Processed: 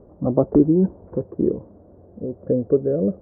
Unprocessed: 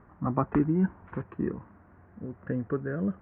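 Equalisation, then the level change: synth low-pass 550 Hz, resonance Q 3.5; low shelf 100 Hz +8.5 dB; bell 380 Hz +7.5 dB 1.7 oct; 0.0 dB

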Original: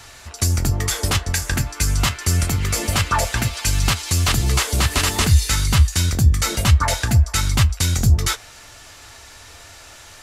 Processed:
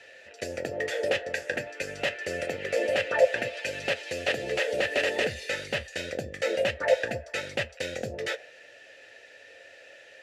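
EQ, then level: HPF 100 Hz 12 dB/oct; dynamic EQ 610 Hz, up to +7 dB, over -39 dBFS, Q 0.82; vowel filter e; +6.0 dB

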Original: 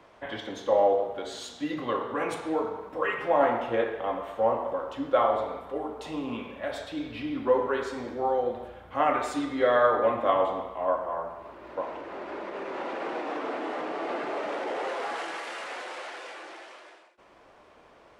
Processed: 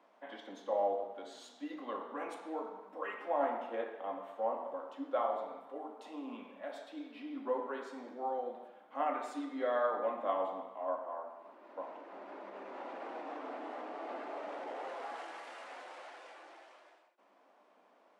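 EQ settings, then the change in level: rippled Chebyshev high-pass 190 Hz, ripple 6 dB; -8.5 dB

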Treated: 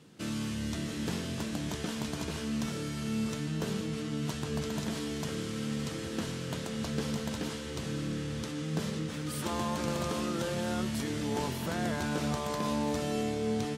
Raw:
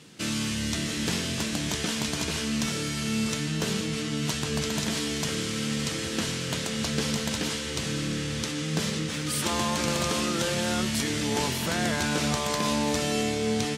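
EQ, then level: bell 2200 Hz -3.5 dB 0.94 oct; bell 6400 Hz -8 dB 2.6 oct; -4.0 dB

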